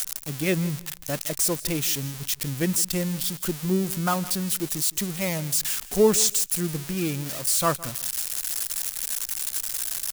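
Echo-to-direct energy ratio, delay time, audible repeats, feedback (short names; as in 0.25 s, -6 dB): -18.5 dB, 0.163 s, 2, 20%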